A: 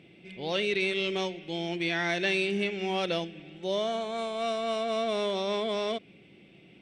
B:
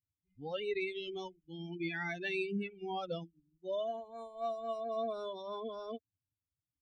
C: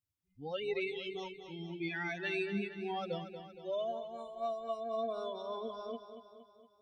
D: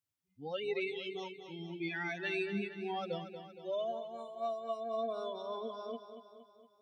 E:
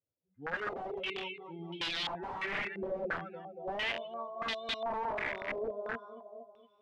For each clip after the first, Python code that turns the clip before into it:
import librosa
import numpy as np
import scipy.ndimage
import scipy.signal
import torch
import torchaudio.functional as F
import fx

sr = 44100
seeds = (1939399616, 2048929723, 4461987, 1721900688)

y1 = fx.bin_expand(x, sr, power=3.0)
y1 = fx.lowpass(y1, sr, hz=2000.0, slope=6)
y1 = F.gain(torch.from_numpy(y1), -1.5).numpy()
y2 = fx.echo_feedback(y1, sr, ms=233, feedback_pct=54, wet_db=-10.0)
y3 = scipy.signal.sosfilt(scipy.signal.butter(2, 130.0, 'highpass', fs=sr, output='sos'), y2)
y4 = (np.mod(10.0 ** (34.0 / 20.0) * y3 + 1.0, 2.0) - 1.0) / 10.0 ** (34.0 / 20.0)
y4 = fx.filter_held_lowpass(y4, sr, hz=2.9, low_hz=530.0, high_hz=3600.0)